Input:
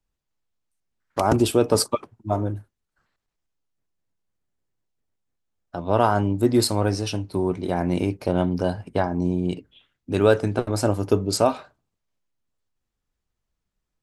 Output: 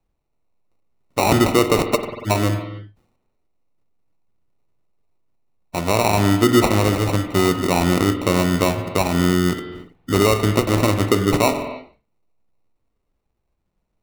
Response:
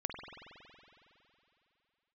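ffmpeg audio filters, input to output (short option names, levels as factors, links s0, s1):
-filter_complex "[0:a]acrusher=samples=27:mix=1:aa=0.000001,alimiter=limit=0.224:level=0:latency=1:release=122,asplit=2[s0][s1];[1:a]atrim=start_sample=2205,afade=t=out:st=0.37:d=0.01,atrim=end_sample=16758,asetrate=43218,aresample=44100[s2];[s1][s2]afir=irnorm=-1:irlink=0,volume=0.944[s3];[s0][s3]amix=inputs=2:normalize=0,volume=1.19"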